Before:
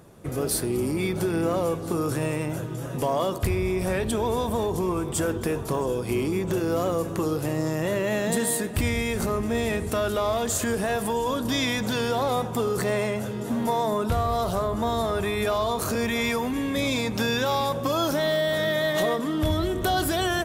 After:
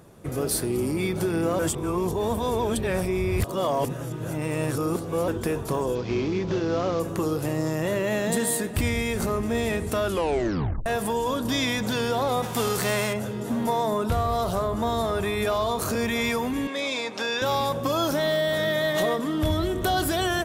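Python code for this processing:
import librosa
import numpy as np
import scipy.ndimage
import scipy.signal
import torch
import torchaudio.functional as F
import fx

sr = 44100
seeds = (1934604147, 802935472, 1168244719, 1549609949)

y = fx.cvsd(x, sr, bps=32000, at=(5.95, 7.0))
y = fx.envelope_flatten(y, sr, power=0.6, at=(12.42, 13.12), fade=0.02)
y = fx.bandpass_edges(y, sr, low_hz=430.0, high_hz=6500.0, at=(16.67, 17.42))
y = fx.edit(y, sr, fx.reverse_span(start_s=1.59, length_s=3.69),
    fx.tape_stop(start_s=10.07, length_s=0.79), tone=tone)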